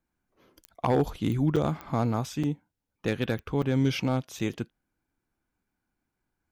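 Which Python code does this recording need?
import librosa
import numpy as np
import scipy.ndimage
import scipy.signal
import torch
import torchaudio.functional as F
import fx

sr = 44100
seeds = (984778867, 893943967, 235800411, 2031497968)

y = fx.fix_declip(x, sr, threshold_db=-16.0)
y = fx.fix_declick_ar(y, sr, threshold=10.0)
y = fx.fix_interpolate(y, sr, at_s=(1.56, 2.43, 3.62, 4.39), length_ms=5.7)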